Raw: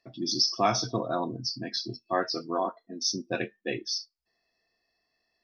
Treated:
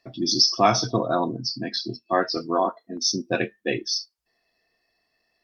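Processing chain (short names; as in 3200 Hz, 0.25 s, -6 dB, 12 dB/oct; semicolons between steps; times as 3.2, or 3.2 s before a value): 1.3–2.37 Chebyshev band-pass 150–4600 Hz, order 2; 2.97–3.57 gate -57 dBFS, range -52 dB; gain +6.5 dB; Opus 48 kbps 48000 Hz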